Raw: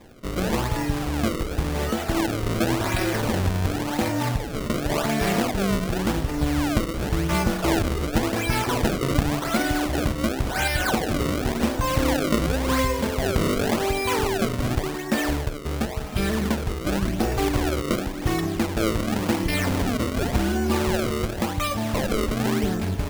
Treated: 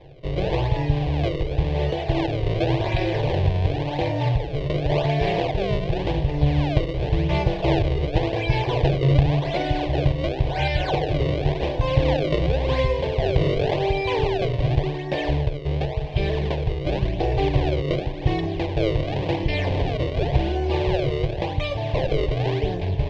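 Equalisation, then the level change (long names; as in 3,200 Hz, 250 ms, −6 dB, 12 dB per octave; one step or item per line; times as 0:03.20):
low-pass filter 3,600 Hz 24 dB per octave
parametric band 140 Hz +14.5 dB 0.28 octaves
phaser with its sweep stopped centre 550 Hz, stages 4
+4.0 dB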